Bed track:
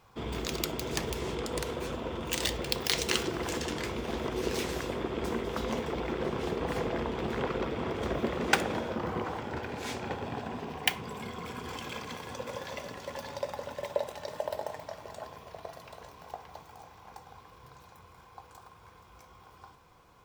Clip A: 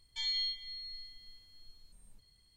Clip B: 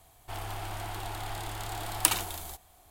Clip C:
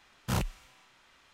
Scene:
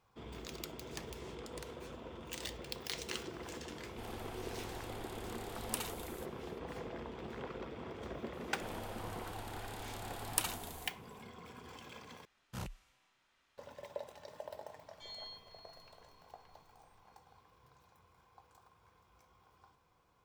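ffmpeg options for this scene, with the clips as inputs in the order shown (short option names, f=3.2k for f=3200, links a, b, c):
-filter_complex "[2:a]asplit=2[a][b];[0:a]volume=-12.5dB[c];[a]alimiter=limit=-5.5dB:level=0:latency=1:release=106[d];[c]asplit=2[e][f];[e]atrim=end=12.254[g];[3:a]atrim=end=1.33,asetpts=PTS-STARTPTS,volume=-13.5dB[h];[f]atrim=start=13.576[i];[d]atrim=end=2.9,asetpts=PTS-STARTPTS,volume=-11.5dB,afade=t=in:d=0.004:c=hsin,afade=t=out:st=2.896:d=0.004:c=hsin,adelay=162729S[j];[b]atrim=end=2.9,asetpts=PTS-STARTPTS,volume=-9.5dB,afade=t=in:d=0.004:c=hsin,afade=t=out:st=2.896:d=0.004:c=hsin,adelay=8330[k];[1:a]atrim=end=2.56,asetpts=PTS-STARTPTS,volume=-15dB,afade=t=in:d=0.004:c=hsin,afade=t=out:st=2.556:d=0.004:c=hsin,adelay=14840[l];[g][h]acrossfade=d=0.004:c1=hsin:c2=hsin[m];[m][i]acrossfade=d=0.004:c1=hsin:c2=hsin[n];[n][j][k][l]amix=inputs=4:normalize=0"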